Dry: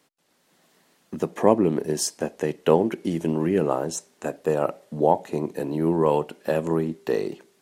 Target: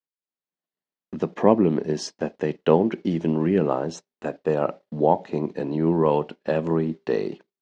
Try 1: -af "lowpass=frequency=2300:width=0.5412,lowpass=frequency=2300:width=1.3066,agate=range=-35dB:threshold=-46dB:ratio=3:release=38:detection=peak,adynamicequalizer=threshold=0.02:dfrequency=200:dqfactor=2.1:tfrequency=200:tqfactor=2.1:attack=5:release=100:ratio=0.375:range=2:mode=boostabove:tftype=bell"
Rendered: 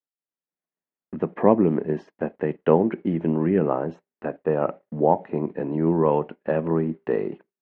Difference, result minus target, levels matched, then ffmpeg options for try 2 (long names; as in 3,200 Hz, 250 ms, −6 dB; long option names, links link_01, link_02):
4,000 Hz band −14.5 dB
-af "lowpass=frequency=5100:width=0.5412,lowpass=frequency=5100:width=1.3066,agate=range=-35dB:threshold=-46dB:ratio=3:release=38:detection=peak,adynamicequalizer=threshold=0.02:dfrequency=200:dqfactor=2.1:tfrequency=200:tqfactor=2.1:attack=5:release=100:ratio=0.375:range=2:mode=boostabove:tftype=bell"